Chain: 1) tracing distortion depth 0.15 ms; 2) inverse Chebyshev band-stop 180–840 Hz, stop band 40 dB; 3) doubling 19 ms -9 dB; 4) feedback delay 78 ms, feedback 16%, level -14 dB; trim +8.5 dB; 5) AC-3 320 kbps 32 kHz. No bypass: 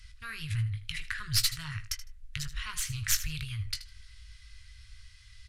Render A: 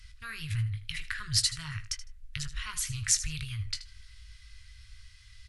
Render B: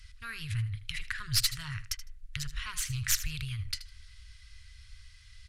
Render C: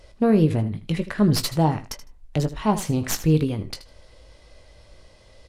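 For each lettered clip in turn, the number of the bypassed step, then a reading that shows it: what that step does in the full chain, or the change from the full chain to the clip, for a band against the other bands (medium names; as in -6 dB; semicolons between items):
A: 1, crest factor change +2.5 dB; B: 3, momentary loudness spread change -3 LU; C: 2, 1 kHz band +19.5 dB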